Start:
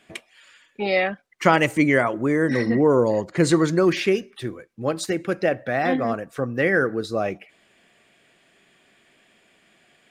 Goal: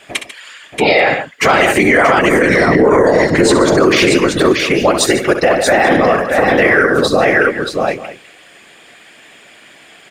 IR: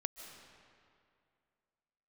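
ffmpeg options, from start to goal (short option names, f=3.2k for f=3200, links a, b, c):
-filter_complex "[0:a]highpass=f=430:p=1,afftfilt=real='hypot(re,im)*cos(2*PI*random(0))':imag='hypot(re,im)*sin(2*PI*random(1))':win_size=512:overlap=0.75,acontrast=68,asplit=2[a][b];[b]aecho=0:1:64|144|631|835:0.299|0.211|0.531|0.112[c];[a][c]amix=inputs=2:normalize=0,alimiter=level_in=17dB:limit=-1dB:release=50:level=0:latency=1,volume=-1dB"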